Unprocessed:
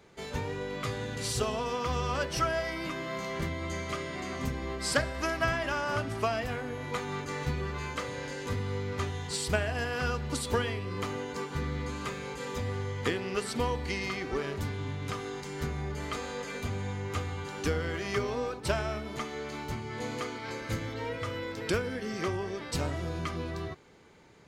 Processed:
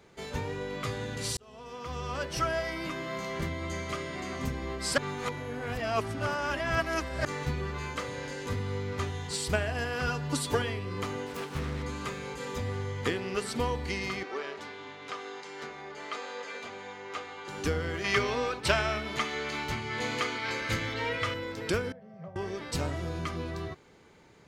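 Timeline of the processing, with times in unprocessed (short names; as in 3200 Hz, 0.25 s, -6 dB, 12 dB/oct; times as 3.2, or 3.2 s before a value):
1.37–2.53 fade in
4.98–7.25 reverse
10.07–10.62 comb 7 ms, depth 72%
11.26–11.83 self-modulated delay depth 0.4 ms
14.23–17.48 BPF 460–5300 Hz
18.04–21.34 bell 2600 Hz +9.5 dB 2.6 oct
21.92–22.36 double band-pass 320 Hz, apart 1.9 oct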